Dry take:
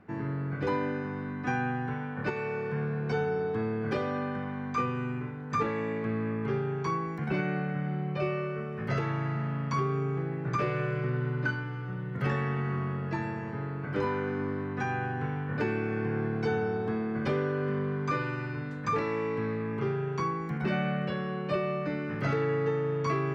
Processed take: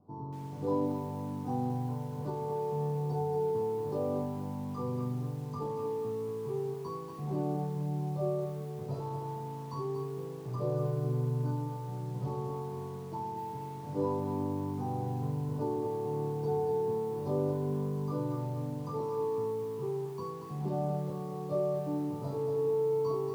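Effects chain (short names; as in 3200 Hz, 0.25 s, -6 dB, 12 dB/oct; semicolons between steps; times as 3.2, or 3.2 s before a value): Chebyshev band-stop 1000–4400 Hz, order 3; air absorption 160 m; resonator bank G2 major, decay 0.29 s; lo-fi delay 0.233 s, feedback 35%, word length 10-bit, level -6.5 dB; gain +7.5 dB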